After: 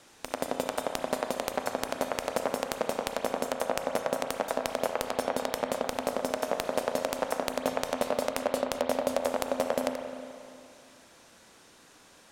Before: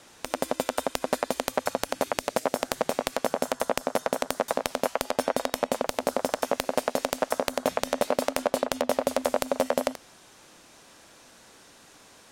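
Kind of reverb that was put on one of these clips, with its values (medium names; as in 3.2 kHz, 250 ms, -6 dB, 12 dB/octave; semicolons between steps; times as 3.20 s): spring tank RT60 2.4 s, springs 35/59 ms, chirp 20 ms, DRR 5 dB; trim -4 dB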